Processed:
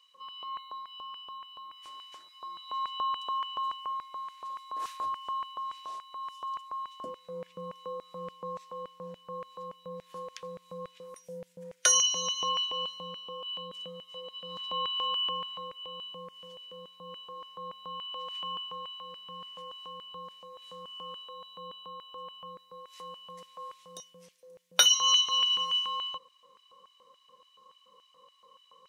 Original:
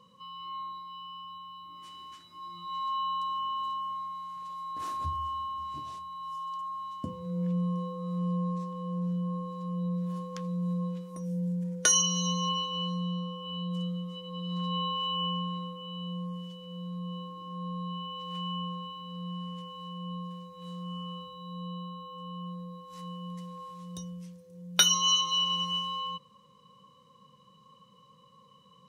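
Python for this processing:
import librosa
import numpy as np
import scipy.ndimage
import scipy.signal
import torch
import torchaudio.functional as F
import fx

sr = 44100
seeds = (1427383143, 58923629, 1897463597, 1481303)

y = fx.filter_lfo_highpass(x, sr, shape='square', hz=3.5, low_hz=530.0, high_hz=2300.0, q=1.6)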